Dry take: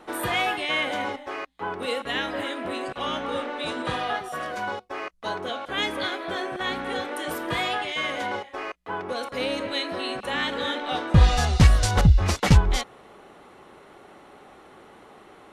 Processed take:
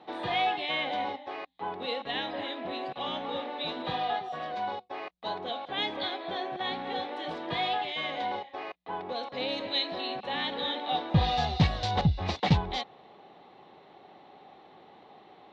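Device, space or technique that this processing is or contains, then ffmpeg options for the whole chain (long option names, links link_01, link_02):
guitar cabinet: -filter_complex "[0:a]asettb=1/sr,asplit=3[link_01][link_02][link_03];[link_01]atrim=end=9.484[link_04];[link_02]atrim=start=9.48:end=10.01,asetpts=PTS-STARTPTS,afade=type=in:duration=0.004:curve=qsin,afade=type=out:start_time=0.526:duration=0.004:curve=qsin,aemphasis=mode=production:type=cd[link_05];[link_03]atrim=start=10.006[link_06];[link_04][link_05]acrossfade=duration=0.004:curve1=hsin:curve2=qsin[link_07];[link_07][link_06]acrossfade=duration=0.004:curve1=qsin:curve2=hsin,highpass=98,equalizer=frequency=160:width_type=q:width=4:gain=4,equalizer=frequency=770:width_type=q:width=4:gain=8,equalizer=frequency=1400:width_type=q:width=4:gain=-8,equalizer=frequency=3800:width_type=q:width=4:gain=8,lowpass=frequency=4600:width=0.5412,lowpass=frequency=4600:width=1.3066,volume=-6.5dB"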